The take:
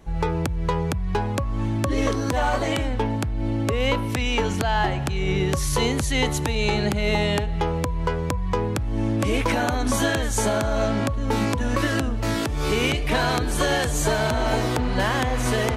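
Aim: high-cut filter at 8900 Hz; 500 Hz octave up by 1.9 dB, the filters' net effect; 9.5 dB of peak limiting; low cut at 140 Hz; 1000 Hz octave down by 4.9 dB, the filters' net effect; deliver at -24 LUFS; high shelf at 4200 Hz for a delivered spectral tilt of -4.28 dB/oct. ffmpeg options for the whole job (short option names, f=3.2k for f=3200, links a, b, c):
-af "highpass=140,lowpass=8.9k,equalizer=f=500:t=o:g=4.5,equalizer=f=1k:t=o:g=-8.5,highshelf=f=4.2k:g=5,volume=3dB,alimiter=limit=-14dB:level=0:latency=1"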